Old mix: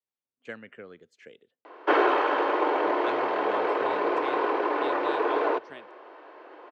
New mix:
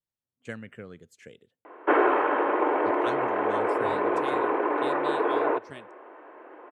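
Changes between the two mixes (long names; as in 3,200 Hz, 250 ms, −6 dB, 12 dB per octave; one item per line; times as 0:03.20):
background: add low-pass filter 2,400 Hz 24 dB per octave
master: remove three-way crossover with the lows and the highs turned down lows −15 dB, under 250 Hz, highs −22 dB, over 5,400 Hz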